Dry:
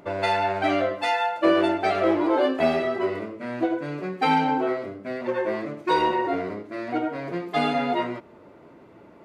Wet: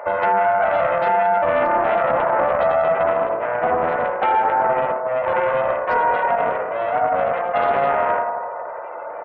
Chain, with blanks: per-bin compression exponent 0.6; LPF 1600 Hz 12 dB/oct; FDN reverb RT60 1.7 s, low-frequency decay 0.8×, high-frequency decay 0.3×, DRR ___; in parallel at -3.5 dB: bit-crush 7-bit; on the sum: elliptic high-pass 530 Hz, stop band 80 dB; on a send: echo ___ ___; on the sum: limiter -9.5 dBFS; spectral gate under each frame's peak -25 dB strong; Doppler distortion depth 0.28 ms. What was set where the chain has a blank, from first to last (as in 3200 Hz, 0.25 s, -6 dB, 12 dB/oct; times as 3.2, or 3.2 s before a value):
0 dB, 0.102 s, -12.5 dB